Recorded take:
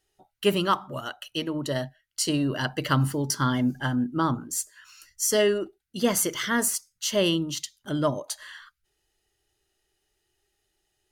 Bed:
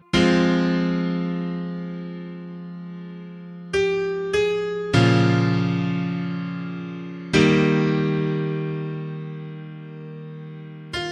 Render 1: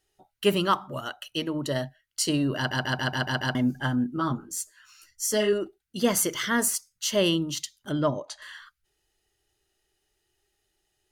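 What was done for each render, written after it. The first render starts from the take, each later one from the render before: 2.57 s: stutter in place 0.14 s, 7 plays; 4.16–5.53 s: three-phase chorus; 7.92–8.42 s: distance through air 98 m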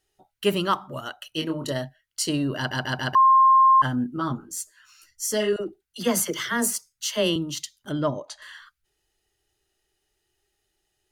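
1.32–1.72 s: doubling 25 ms -4.5 dB; 3.15–3.82 s: bleep 1.06 kHz -12 dBFS; 5.56–7.36 s: phase dispersion lows, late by 46 ms, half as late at 580 Hz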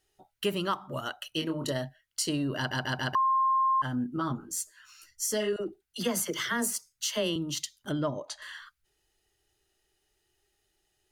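compression 2.5:1, threshold -29 dBFS, peak gain reduction 9.5 dB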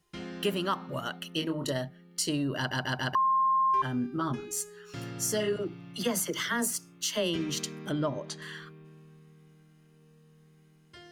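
add bed -23.5 dB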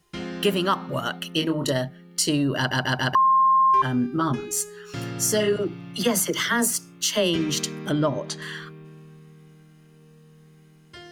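trim +7.5 dB

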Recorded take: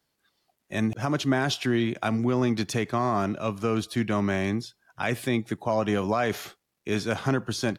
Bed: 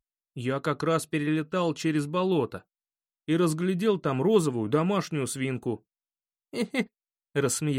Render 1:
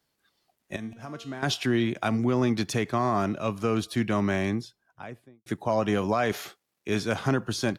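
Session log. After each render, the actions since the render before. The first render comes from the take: 0.76–1.43 s: feedback comb 230 Hz, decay 0.75 s, mix 80%; 4.35–5.46 s: studio fade out; 6.32–6.89 s: bass shelf 120 Hz -11.5 dB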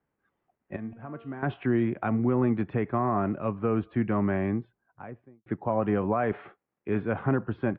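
Bessel low-pass 1.4 kHz, order 8; band-stop 640 Hz, Q 17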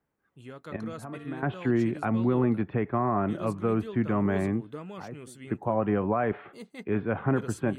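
add bed -15.5 dB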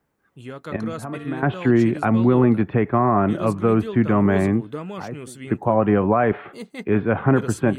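trim +8.5 dB

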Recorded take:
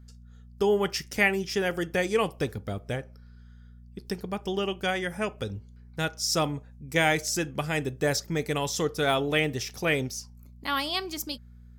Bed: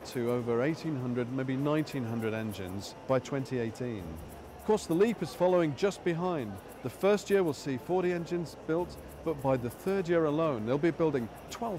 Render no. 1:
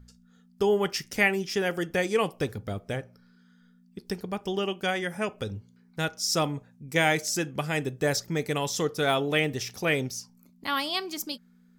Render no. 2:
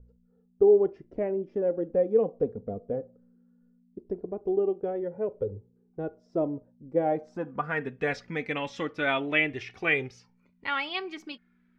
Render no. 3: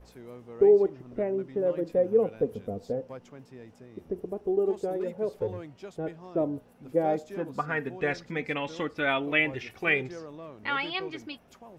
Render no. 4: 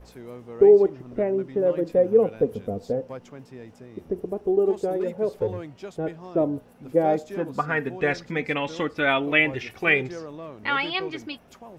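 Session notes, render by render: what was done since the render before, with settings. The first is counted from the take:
de-hum 60 Hz, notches 2
low-pass sweep 510 Hz -> 2.3 kHz, 6.98–8.01 s; flange 0.19 Hz, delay 2 ms, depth 2.4 ms, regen +27%
add bed -14.5 dB
trim +5 dB

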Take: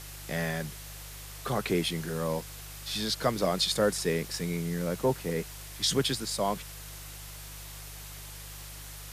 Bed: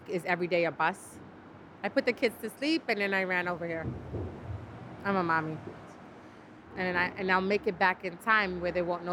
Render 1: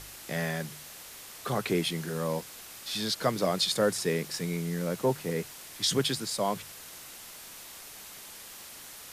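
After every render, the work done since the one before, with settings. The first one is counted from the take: de-hum 50 Hz, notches 3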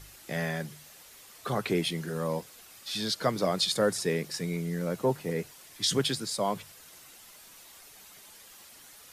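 noise reduction 8 dB, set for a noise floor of -47 dBFS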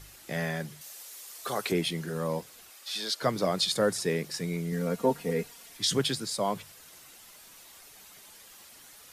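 0.81–1.72 s: tone controls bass -13 dB, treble +8 dB; 2.70–3.23 s: high-pass 420 Hz; 4.72–5.77 s: comb 4.3 ms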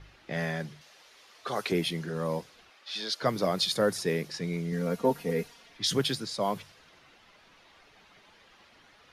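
level-controlled noise filter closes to 2.8 kHz, open at -24 dBFS; peaking EQ 7.9 kHz -8 dB 0.36 oct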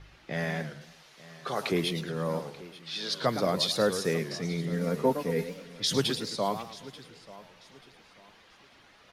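feedback delay 886 ms, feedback 31%, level -19 dB; modulated delay 110 ms, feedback 37%, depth 216 cents, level -10 dB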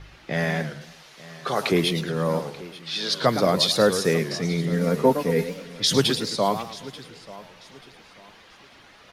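trim +7 dB

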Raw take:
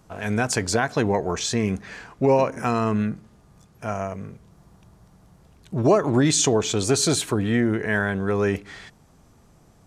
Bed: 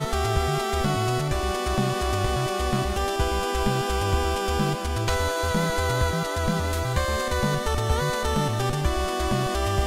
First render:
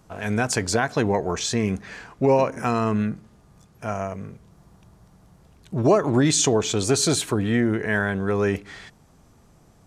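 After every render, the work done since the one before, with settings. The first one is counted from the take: no audible change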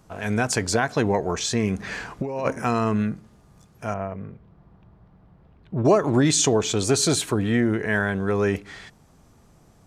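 1.79–2.53 s: compressor with a negative ratio -26 dBFS; 3.94–5.85 s: distance through air 390 m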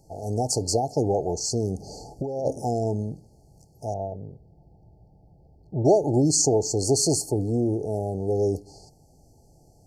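FFT band-reject 890–4200 Hz; peaking EQ 210 Hz -9.5 dB 0.39 oct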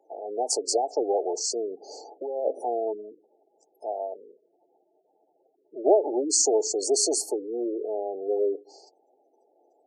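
spectral gate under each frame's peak -20 dB strong; steep high-pass 350 Hz 36 dB/octave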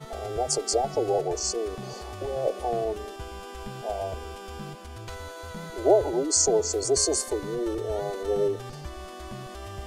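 add bed -14.5 dB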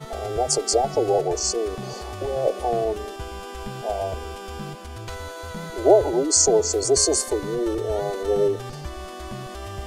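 trim +4.5 dB

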